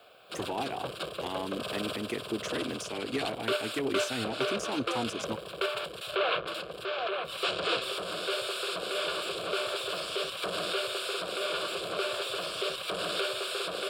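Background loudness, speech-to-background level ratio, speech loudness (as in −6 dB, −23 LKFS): −33.0 LKFS, −4.0 dB, −37.0 LKFS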